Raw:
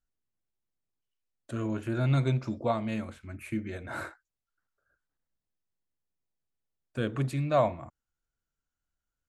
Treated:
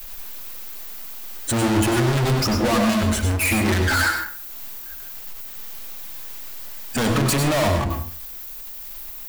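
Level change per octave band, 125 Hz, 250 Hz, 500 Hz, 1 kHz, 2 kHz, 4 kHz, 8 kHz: +8.5, +12.0, +8.0, +10.5, +18.5, +21.0, +28.5 decibels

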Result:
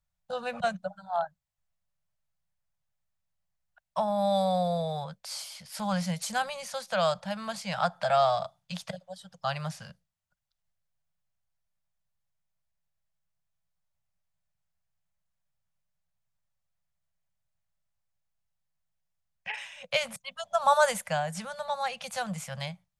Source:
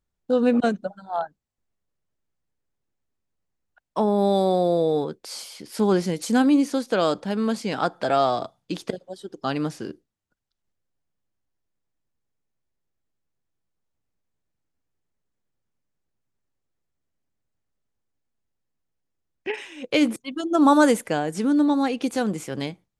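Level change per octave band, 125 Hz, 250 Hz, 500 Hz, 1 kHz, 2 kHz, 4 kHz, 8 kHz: −4.0, −16.5, −7.0, −3.0, −2.5, −2.0, −2.0 decibels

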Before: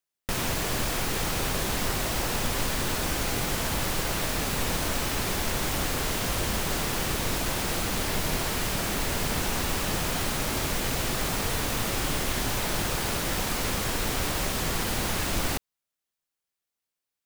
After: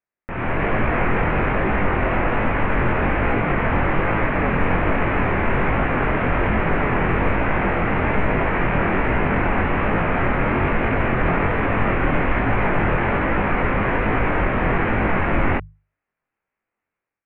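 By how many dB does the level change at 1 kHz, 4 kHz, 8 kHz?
+11.0 dB, −9.5 dB, below −40 dB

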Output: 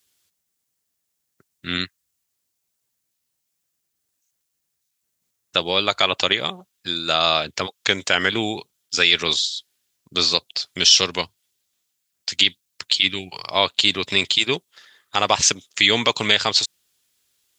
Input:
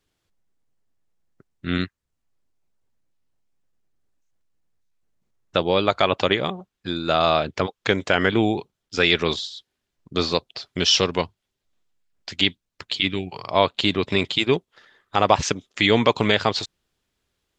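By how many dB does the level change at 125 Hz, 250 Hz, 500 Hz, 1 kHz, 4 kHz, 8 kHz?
−6.5, −5.5, −4.5, −1.5, +6.0, +10.0 decibels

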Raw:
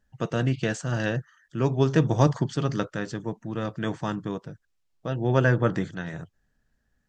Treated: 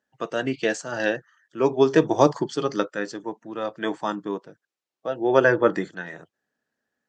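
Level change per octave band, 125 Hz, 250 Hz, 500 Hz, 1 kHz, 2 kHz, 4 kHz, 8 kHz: −11.0, +1.0, +6.5, +5.5, +4.5, +3.0, +2.5 decibels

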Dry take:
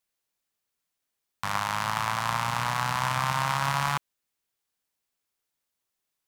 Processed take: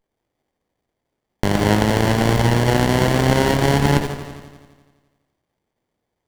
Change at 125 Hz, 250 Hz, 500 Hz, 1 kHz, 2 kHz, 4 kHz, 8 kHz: +16.0, +23.0, +21.5, +3.5, +6.0, +8.0, +7.0 decibels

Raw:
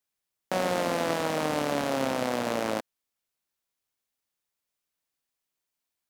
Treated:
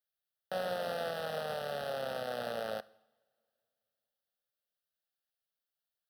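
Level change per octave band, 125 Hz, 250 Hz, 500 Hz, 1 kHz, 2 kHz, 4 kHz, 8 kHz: −11.5, −18.0, −7.0, −9.5, −8.5, −7.5, −16.0 decibels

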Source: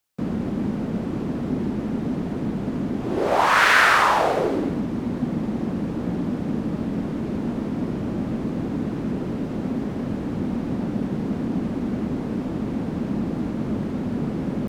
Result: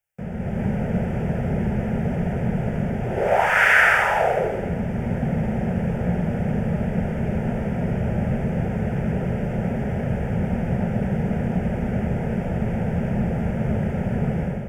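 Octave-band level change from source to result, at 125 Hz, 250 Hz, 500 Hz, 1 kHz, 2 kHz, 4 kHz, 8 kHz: +6.5 dB, −0.5 dB, +2.0 dB, −2.0 dB, +2.0 dB, −7.0 dB, can't be measured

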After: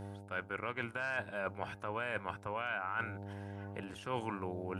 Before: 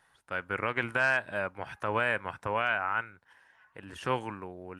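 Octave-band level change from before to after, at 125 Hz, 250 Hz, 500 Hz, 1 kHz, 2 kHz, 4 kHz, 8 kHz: −2.0 dB, −3.0 dB, −6.5 dB, −7.0 dB, −9.0 dB, −7.5 dB, can't be measured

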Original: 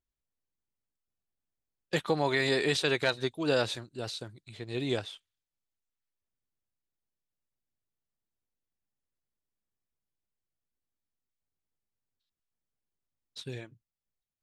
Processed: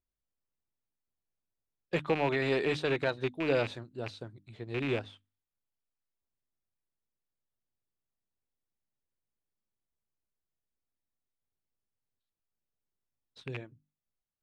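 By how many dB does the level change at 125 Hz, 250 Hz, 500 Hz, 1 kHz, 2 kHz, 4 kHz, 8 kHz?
−0.5 dB, −1.0 dB, −0.5 dB, −1.5 dB, −3.0 dB, −8.5 dB, below −10 dB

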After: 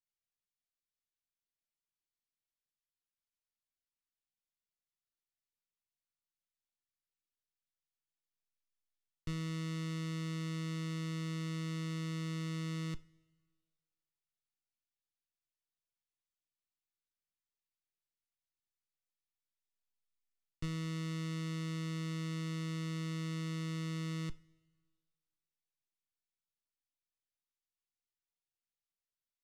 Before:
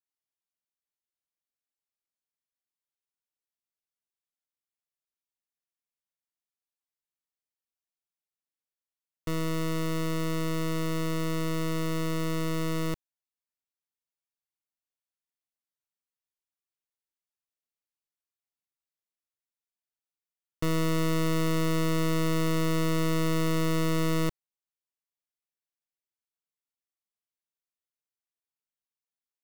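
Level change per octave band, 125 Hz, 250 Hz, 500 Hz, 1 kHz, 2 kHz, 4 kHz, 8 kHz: −7.5, −10.5, −18.5, −16.0, −11.0, −9.5, −12.5 decibels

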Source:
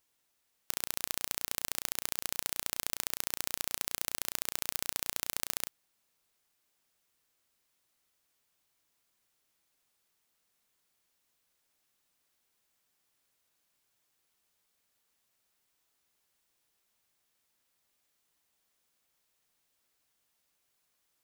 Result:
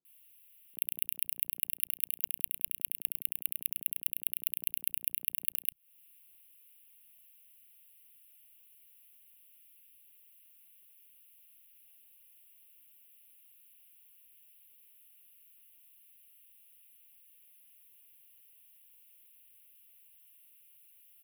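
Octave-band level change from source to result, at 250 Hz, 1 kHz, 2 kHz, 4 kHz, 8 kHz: below −15 dB, below −25 dB, −8.5 dB, −10.0 dB, −5.0 dB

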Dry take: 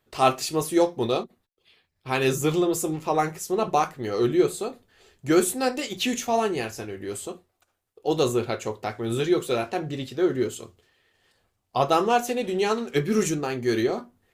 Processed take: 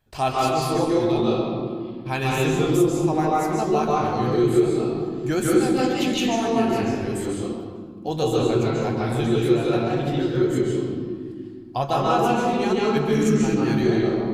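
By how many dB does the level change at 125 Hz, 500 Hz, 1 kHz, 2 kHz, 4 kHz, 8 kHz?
+8.0, +3.0, +2.5, +1.5, +1.0, −2.5 decibels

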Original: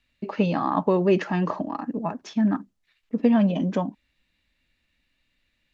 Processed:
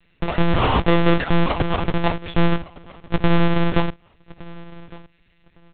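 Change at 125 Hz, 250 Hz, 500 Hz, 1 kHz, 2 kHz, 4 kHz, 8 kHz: +8.5 dB, +0.5 dB, +2.5 dB, +5.5 dB, +11.0 dB, +13.5 dB, can't be measured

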